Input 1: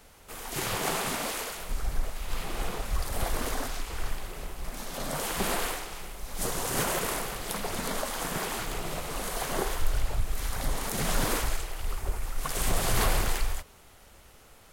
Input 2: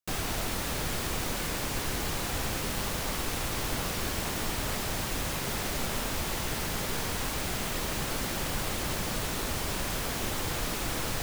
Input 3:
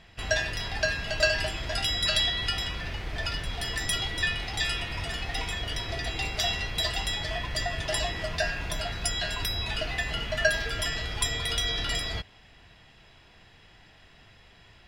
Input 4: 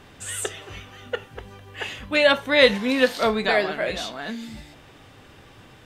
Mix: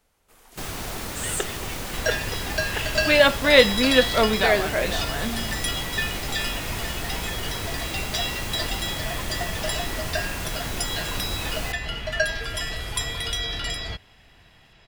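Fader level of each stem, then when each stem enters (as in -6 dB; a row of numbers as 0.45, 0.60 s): -14.0, -0.5, +0.5, +1.0 dB; 0.00, 0.50, 1.75, 0.95 s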